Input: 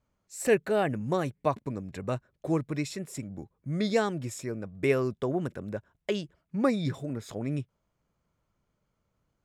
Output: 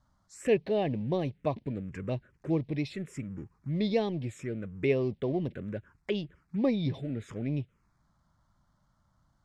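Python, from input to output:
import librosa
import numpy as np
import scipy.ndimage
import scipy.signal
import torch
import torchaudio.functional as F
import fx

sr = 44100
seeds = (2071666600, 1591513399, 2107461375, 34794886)

y = fx.law_mismatch(x, sr, coded='mu')
y = fx.env_phaser(y, sr, low_hz=430.0, high_hz=1400.0, full_db=-26.0)
y = scipy.signal.sosfilt(scipy.signal.butter(2, 5100.0, 'lowpass', fs=sr, output='sos'), y)
y = F.gain(torch.from_numpy(y), -1.0).numpy()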